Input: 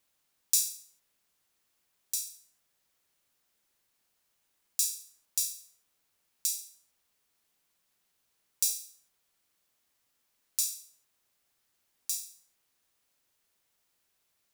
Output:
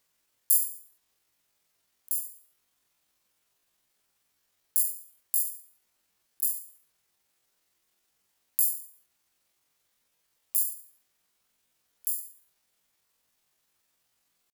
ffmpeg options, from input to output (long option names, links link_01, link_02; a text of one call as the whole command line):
ffmpeg -i in.wav -af "asetrate=83250,aresample=44100,atempo=0.529732,volume=5dB" out.wav